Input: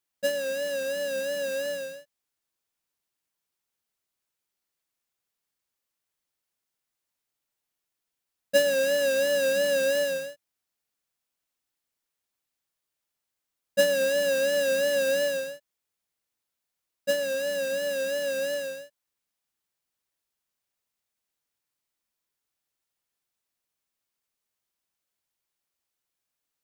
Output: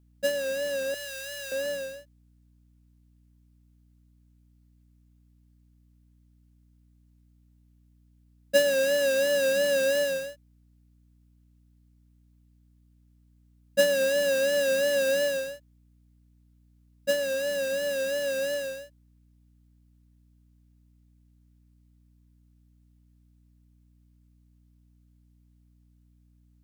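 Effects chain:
0:00.94–0:01.52: Bessel high-pass filter 1,500 Hz, order 2
mains hum 60 Hz, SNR 29 dB

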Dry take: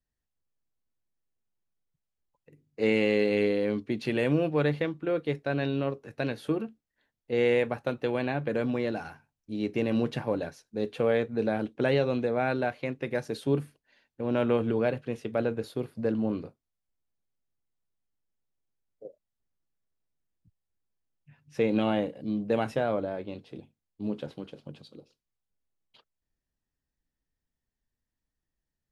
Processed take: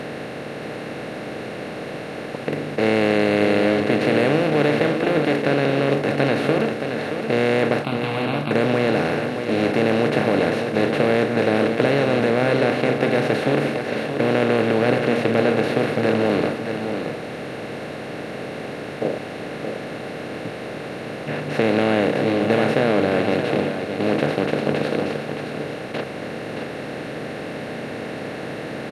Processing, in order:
compressor on every frequency bin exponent 0.2
0:07.84–0:08.51: phaser with its sweep stopped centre 1,800 Hz, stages 6
single-tap delay 623 ms −7.5 dB

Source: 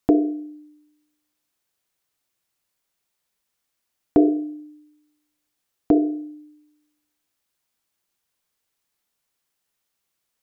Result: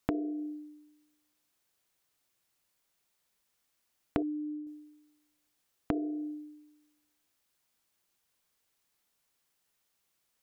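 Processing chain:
0:04.22–0:04.67: expanding power law on the bin magnitudes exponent 4
downward compressor 10 to 1, threshold −29 dBFS, peak gain reduction 18 dB
every ending faded ahead of time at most 180 dB per second

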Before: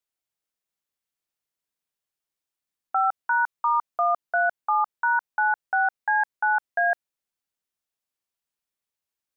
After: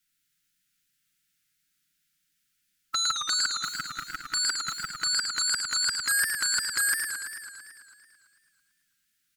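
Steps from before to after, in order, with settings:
spectral envelope flattened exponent 0.6
linear-phase brick-wall band-stop 310–1,300 Hz
comb filter 6.2 ms, depth 65%
in parallel at −1 dB: sine wavefolder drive 13 dB, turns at −15.5 dBFS
on the sum: feedback echo with a swinging delay time 111 ms, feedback 72%, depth 153 cents, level −6 dB
level −6.5 dB

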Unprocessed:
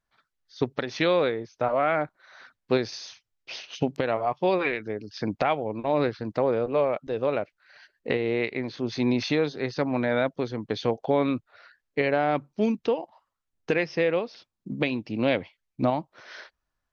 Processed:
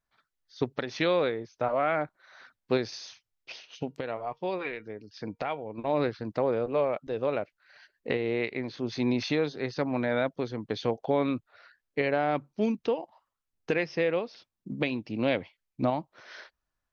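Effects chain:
0:03.52–0:05.78: tuned comb filter 470 Hz, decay 0.18 s, harmonics all, mix 50%
level −3 dB

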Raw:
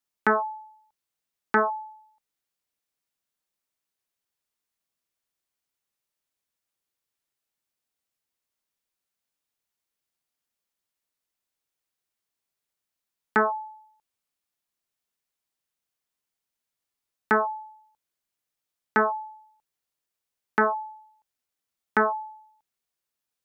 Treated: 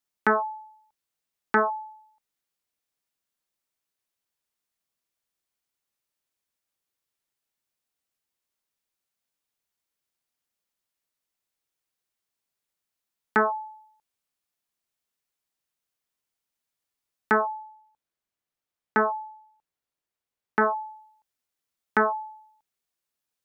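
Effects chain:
0:17.41–0:20.62: high-shelf EQ 3,400 Hz −8 dB

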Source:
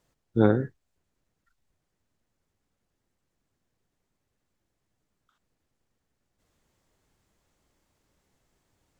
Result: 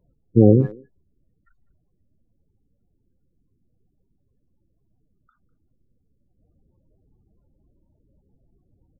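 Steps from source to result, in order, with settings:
low-shelf EQ 200 Hz +5.5 dB
spectral peaks only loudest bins 16
far-end echo of a speakerphone 200 ms, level −22 dB
boost into a limiter +9.5 dB
level −1 dB

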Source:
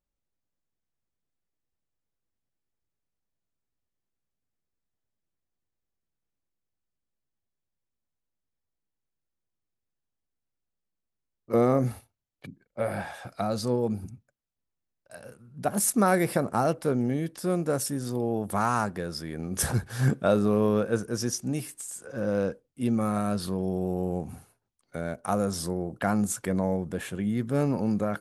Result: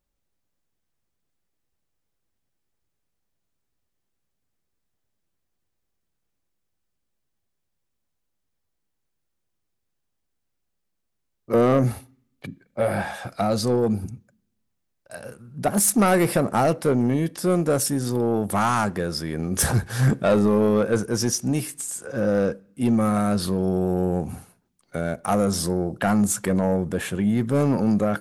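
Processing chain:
soft clipping −19.5 dBFS, distortion −13 dB
on a send: convolution reverb RT60 0.65 s, pre-delay 3 ms, DRR 20.5 dB
on the sum: level +7.5 dB

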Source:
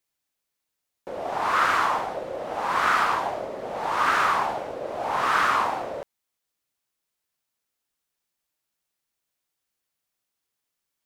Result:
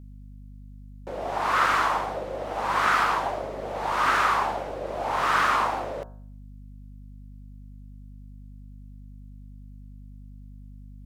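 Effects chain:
tape wow and flutter 20 cents
hum removal 61.92 Hz, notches 28
mains hum 50 Hz, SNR 15 dB

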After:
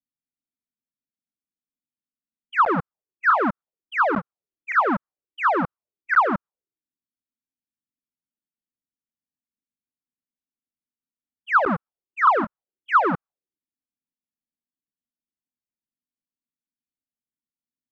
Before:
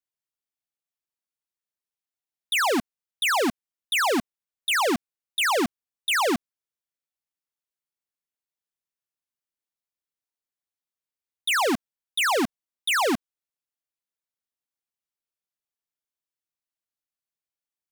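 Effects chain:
pitch shifter swept by a sawtooth −6.5 semitones, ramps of 472 ms
regular buffer underruns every 0.50 s, samples 512, zero, from 0:00.65
envelope-controlled low-pass 250–1,300 Hz up, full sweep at −28 dBFS

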